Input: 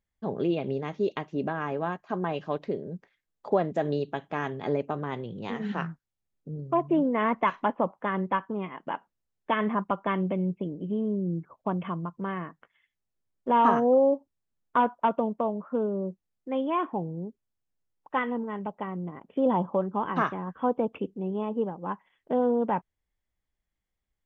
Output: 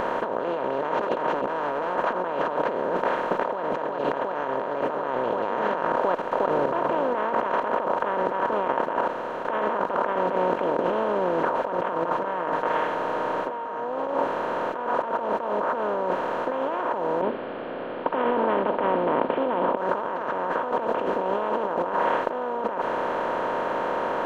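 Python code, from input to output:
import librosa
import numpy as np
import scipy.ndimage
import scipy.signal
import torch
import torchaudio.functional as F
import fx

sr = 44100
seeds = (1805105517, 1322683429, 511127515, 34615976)

y = fx.clip_hard(x, sr, threshold_db=-29.0, at=(1.01, 2.13))
y = fx.echo_throw(y, sr, start_s=2.95, length_s=0.67, ms=360, feedback_pct=60, wet_db=-1.5)
y = fx.level_steps(y, sr, step_db=20, at=(5.07, 10.79))
y = fx.comb(y, sr, ms=6.5, depth=0.94, at=(11.92, 14.07))
y = fx.formant_cascade(y, sr, vowel='i', at=(17.21, 19.77))
y = fx.bin_compress(y, sr, power=0.2)
y = fx.graphic_eq_15(y, sr, hz=(160, 630, 1600), db=(-9, 5, 5))
y = fx.over_compress(y, sr, threshold_db=-20.0, ratio=-1.0)
y = y * 10.0 ** (-5.5 / 20.0)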